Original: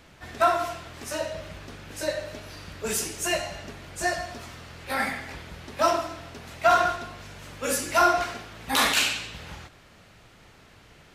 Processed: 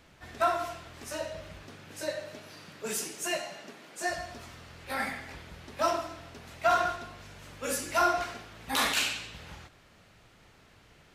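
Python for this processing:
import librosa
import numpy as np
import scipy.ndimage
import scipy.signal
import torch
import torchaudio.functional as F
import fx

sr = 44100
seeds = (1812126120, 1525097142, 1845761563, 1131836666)

y = fx.highpass(x, sr, hz=fx.line((1.62, 85.0), (4.09, 220.0)), slope=24, at=(1.62, 4.09), fade=0.02)
y = y * 10.0 ** (-5.5 / 20.0)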